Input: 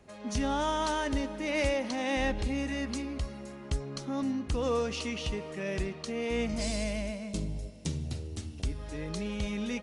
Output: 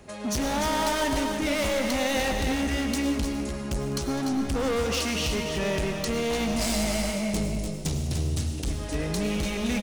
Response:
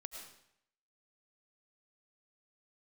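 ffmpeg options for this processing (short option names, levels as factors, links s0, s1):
-filter_complex "[0:a]volume=50.1,asoftclip=hard,volume=0.02,aecho=1:1:204|294|308:0.141|0.398|0.299,asplit=2[s0][s1];[1:a]atrim=start_sample=2205,highshelf=f=4800:g=11[s2];[s1][s2]afir=irnorm=-1:irlink=0,volume=1.12[s3];[s0][s3]amix=inputs=2:normalize=0,volume=1.68"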